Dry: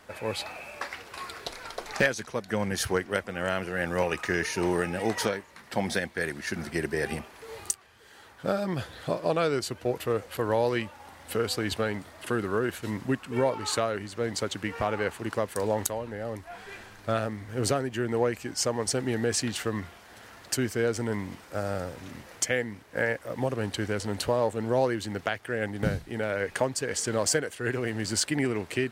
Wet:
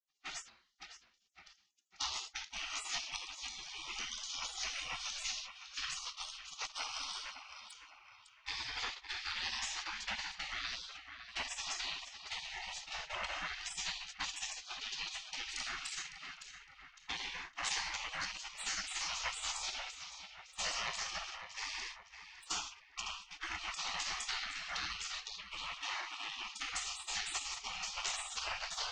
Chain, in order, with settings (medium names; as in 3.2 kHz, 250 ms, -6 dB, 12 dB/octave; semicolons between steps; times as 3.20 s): elliptic low-pass 6.4 kHz, stop band 60 dB; simulated room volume 3700 m³, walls furnished, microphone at 5.2 m; gate -27 dBFS, range -35 dB; compression 2.5:1, threshold -27 dBFS, peak gain reduction 8 dB; de-hum 147.8 Hz, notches 6; on a send: tape echo 558 ms, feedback 52%, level -7.5 dB, low-pass 2.1 kHz; on the sum: spectral gate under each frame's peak -30 dB weak; trim +9.5 dB